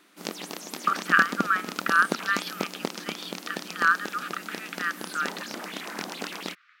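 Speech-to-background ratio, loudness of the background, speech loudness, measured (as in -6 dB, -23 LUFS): 9.0 dB, -35.5 LUFS, -26.5 LUFS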